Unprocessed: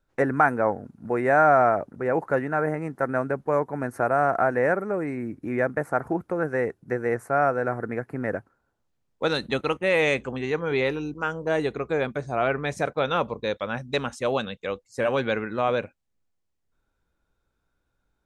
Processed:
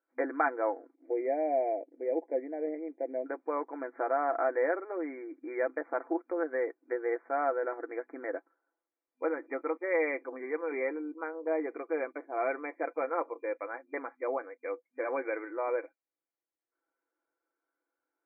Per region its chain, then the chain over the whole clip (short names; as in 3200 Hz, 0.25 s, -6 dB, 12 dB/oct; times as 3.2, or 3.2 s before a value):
0.94–3.26 Chebyshev band-stop 600–2700 Hz + bell 6600 Hz -11.5 dB 0.31 oct + short-mantissa float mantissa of 4-bit
whole clip: FFT band-pass 250–2400 Hz; comb 6 ms, depth 51%; dynamic EQ 1500 Hz, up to -3 dB, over -41 dBFS, Q 3.1; gain -8 dB